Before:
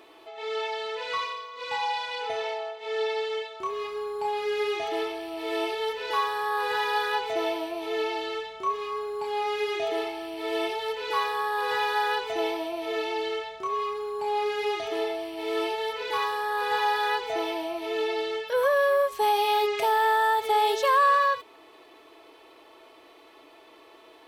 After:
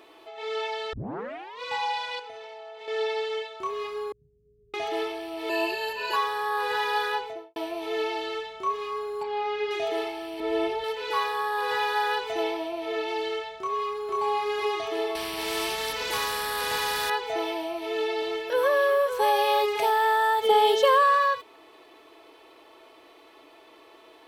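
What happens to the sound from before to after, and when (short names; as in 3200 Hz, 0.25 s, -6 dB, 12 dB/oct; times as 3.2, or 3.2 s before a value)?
0.93 tape start 0.68 s
2.19–2.88 compressor 10:1, threshold -38 dBFS
4.12–4.74 inverse Chebyshev low-pass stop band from 730 Hz, stop band 70 dB
5.49–6.16 ripple EQ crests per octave 1.4, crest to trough 18 dB
7.06–7.56 studio fade out
9.23–9.71 air absorption 160 m
10.4–10.84 tilt -2.5 dB/oct
12.42–13.07 high shelf 8400 Hz -> 5300 Hz -7 dB
13.59–14.17 echo throw 0.49 s, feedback 40%, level -1.5 dB
15.15–17.1 spectral compressor 2:1
17.66–19.9 echo 0.56 s -7.5 dB
20.42–21.02 small resonant body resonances 220/480/3100 Hz, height 16 dB -> 11 dB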